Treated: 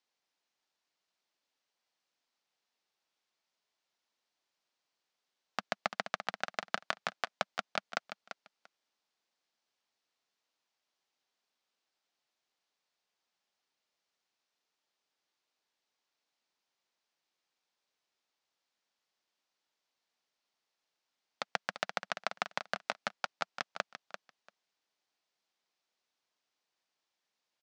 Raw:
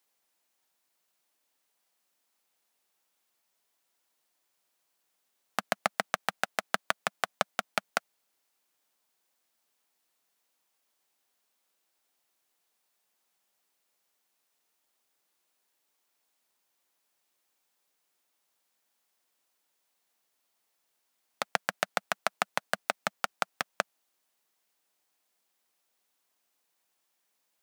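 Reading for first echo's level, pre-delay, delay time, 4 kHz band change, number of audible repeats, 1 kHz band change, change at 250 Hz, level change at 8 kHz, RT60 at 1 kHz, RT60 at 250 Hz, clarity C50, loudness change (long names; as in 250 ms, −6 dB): −10.0 dB, no reverb audible, 342 ms, −4.0 dB, 2, −5.5 dB, −5.5 dB, −10.0 dB, no reverb audible, no reverb audible, no reverb audible, −5.5 dB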